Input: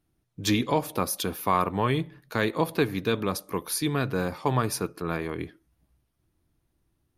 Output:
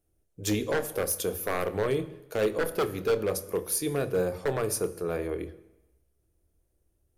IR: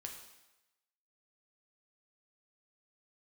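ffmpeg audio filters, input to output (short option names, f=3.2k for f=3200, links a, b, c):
-filter_complex "[0:a]equalizer=f=125:t=o:w=1:g=-8,equalizer=f=250:t=o:w=1:g=-9,equalizer=f=500:t=o:w=1:g=8,equalizer=f=1k:t=o:w=1:g=-10,equalizer=f=2k:t=o:w=1:g=-5,equalizer=f=4k:t=o:w=1:g=-9,equalizer=f=8k:t=o:w=1:g=3,aeval=exprs='0.0891*(abs(mod(val(0)/0.0891+3,4)-2)-1)':c=same,asplit=2[a][b];[1:a]atrim=start_sample=2205,lowshelf=f=320:g=12,adelay=28[c];[b][c]afir=irnorm=-1:irlink=0,volume=-9dB[d];[a][d]amix=inputs=2:normalize=0,volume=1dB"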